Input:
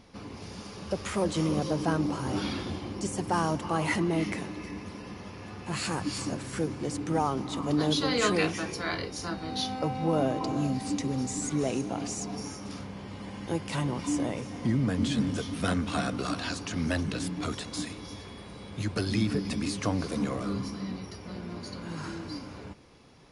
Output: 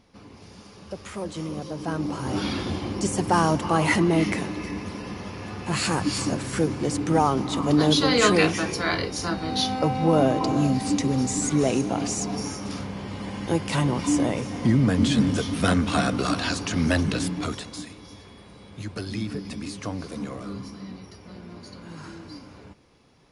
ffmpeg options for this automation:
-af "volume=7dB,afade=t=in:st=1.74:d=1.1:silence=0.266073,afade=t=out:st=17.14:d=0.68:silence=0.316228"

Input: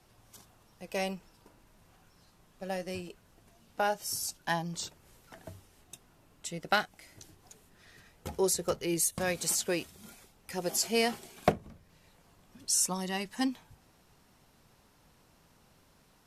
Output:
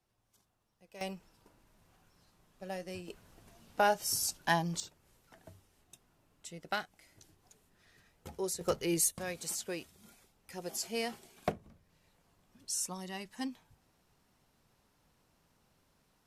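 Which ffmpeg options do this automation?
-af "asetnsamples=n=441:p=0,asendcmd='1.01 volume volume -5dB;3.08 volume volume 2dB;4.8 volume volume -8dB;8.61 volume volume -0.5dB;9.12 volume volume -8dB',volume=-17dB"

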